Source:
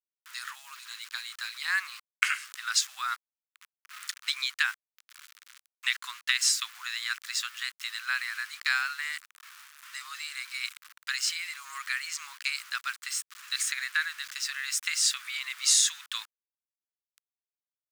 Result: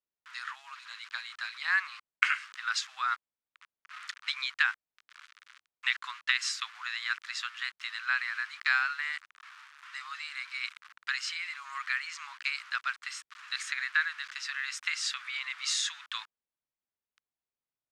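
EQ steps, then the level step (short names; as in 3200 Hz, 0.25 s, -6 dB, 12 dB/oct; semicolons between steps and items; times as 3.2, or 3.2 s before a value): tape spacing loss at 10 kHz 24 dB; +5.0 dB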